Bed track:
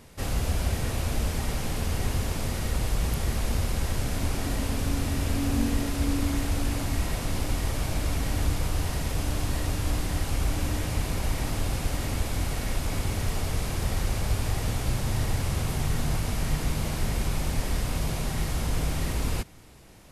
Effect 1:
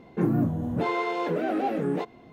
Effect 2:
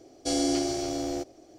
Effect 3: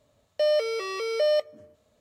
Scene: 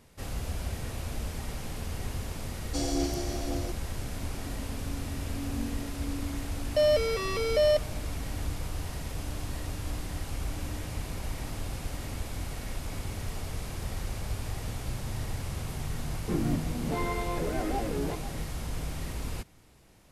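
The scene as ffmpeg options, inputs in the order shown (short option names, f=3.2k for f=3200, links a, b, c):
-filter_complex "[0:a]volume=-7.5dB[a];[2:a]aphaser=in_gain=1:out_gain=1:delay=3.7:decay=0.38:speed=1.9:type=sinusoidal[b];[1:a]aecho=1:1:492:0.237[c];[b]atrim=end=1.58,asetpts=PTS-STARTPTS,volume=-6.5dB,afade=t=in:d=0.004:c=hsin,afade=t=out:st=1.576:d=0.004:c=hsin,adelay=2480[d];[3:a]atrim=end=2,asetpts=PTS-STARTPTS,volume=-0.5dB,afade=t=in:d=0.004:c=hsin,afade=t=out:st=1.996:d=0.004:c=hsin,adelay=6370[e];[c]atrim=end=2.32,asetpts=PTS-STARTPTS,volume=-6dB,afade=t=in:d=0.004:c=hsin,afade=t=out:st=2.316:d=0.004:c=hsin,adelay=16110[f];[a][d][e][f]amix=inputs=4:normalize=0"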